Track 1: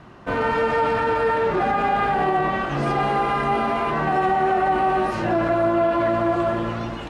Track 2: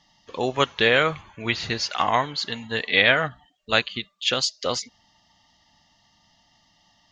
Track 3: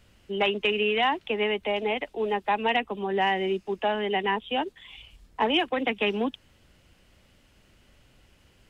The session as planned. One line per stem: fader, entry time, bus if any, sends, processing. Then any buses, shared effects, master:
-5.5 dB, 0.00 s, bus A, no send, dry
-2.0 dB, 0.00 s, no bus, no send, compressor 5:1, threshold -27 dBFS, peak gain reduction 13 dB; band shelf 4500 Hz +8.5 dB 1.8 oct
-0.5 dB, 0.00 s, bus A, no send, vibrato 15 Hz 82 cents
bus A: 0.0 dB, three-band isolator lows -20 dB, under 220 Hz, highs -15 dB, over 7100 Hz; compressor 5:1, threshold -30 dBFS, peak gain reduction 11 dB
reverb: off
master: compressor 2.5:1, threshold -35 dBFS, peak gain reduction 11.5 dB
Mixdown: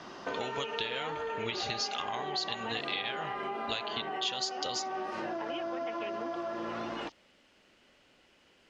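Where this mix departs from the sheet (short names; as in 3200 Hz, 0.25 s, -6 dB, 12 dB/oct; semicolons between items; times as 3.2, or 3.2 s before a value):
stem 1 -5.5 dB -> +0.5 dB; stem 3: missing vibrato 15 Hz 82 cents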